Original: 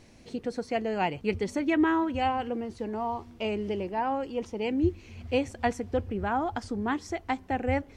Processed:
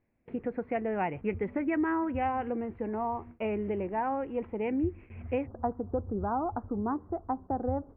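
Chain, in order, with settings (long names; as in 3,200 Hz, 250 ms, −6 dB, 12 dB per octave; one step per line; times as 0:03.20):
noise gate with hold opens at −39 dBFS
Butterworth low-pass 2,400 Hz 48 dB per octave, from 0:05.45 1,300 Hz
downward compressor 3 to 1, threshold −27 dBFS, peak gain reduction 6.5 dB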